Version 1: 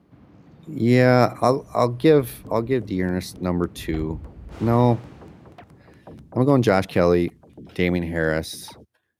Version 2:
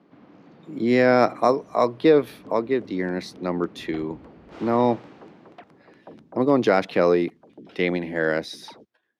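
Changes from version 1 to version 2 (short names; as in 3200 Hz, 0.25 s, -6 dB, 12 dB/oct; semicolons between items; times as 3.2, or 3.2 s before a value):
first sound +3.5 dB; master: add three-band isolator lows -23 dB, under 190 Hz, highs -17 dB, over 5900 Hz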